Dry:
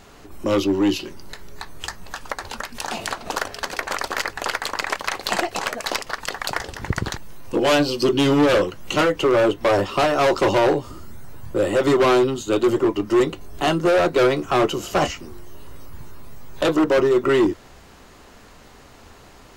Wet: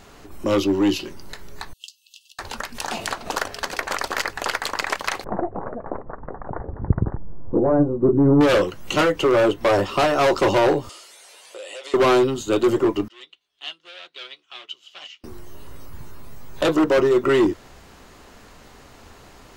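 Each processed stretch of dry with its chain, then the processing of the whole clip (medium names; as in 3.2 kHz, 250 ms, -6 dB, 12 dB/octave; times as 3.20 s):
1.73–2.39 s: brick-wall FIR high-pass 2.6 kHz + peaking EQ 11 kHz -10.5 dB 2.7 oct
5.24–8.41 s: Gaussian low-pass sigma 8.5 samples + bass shelf 260 Hz +7 dB
10.89–11.94 s: elliptic band-pass 520–10000 Hz, stop band 70 dB + resonant high shelf 2 kHz +9.5 dB, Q 1.5 + compression 5:1, threshold -35 dBFS
13.08–15.24 s: band-pass filter 3.3 kHz, Q 4.2 + upward expansion, over -52 dBFS
whole clip: none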